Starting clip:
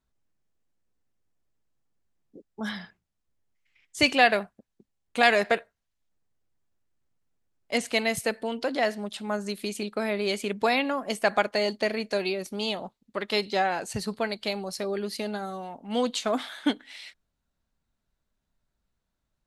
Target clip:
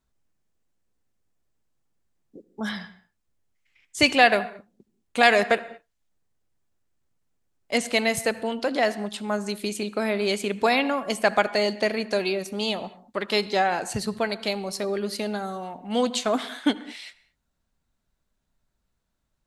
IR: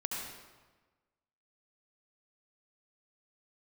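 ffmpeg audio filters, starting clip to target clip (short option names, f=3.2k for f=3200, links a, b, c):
-filter_complex "[0:a]equalizer=f=7.8k:w=1.5:g=2.5,asplit=2[a][b];[1:a]atrim=start_sample=2205,afade=t=out:st=0.28:d=0.01,atrim=end_sample=12789,highshelf=f=4k:g=-8.5[c];[b][c]afir=irnorm=-1:irlink=0,volume=-14dB[d];[a][d]amix=inputs=2:normalize=0,volume=1.5dB"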